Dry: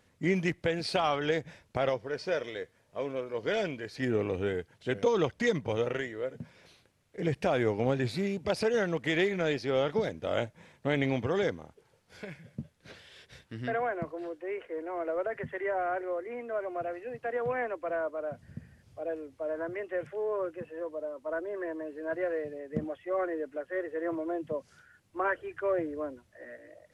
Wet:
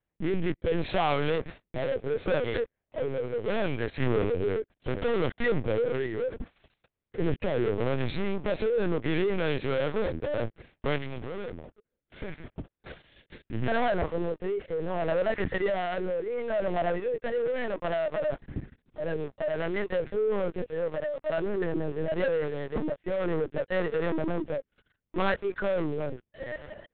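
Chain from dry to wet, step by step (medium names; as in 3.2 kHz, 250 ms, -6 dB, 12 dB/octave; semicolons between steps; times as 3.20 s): low-pass 3.1 kHz 6 dB/octave; waveshaping leveller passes 5; 10.96–13.54 s: compression 10:1, threshold -26 dBFS, peak gain reduction 8.5 dB; rotary cabinet horn 0.7 Hz; LPC vocoder at 8 kHz pitch kept; trim -6 dB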